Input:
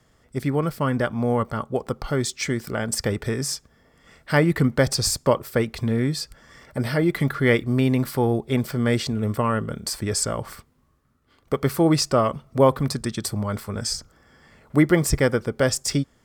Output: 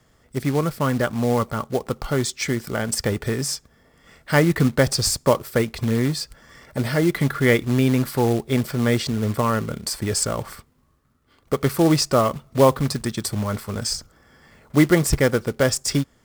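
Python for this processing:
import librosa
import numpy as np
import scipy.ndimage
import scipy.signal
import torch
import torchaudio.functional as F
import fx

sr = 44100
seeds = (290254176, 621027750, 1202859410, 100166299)

y = fx.quant_float(x, sr, bits=2)
y = y * 10.0 ** (1.5 / 20.0)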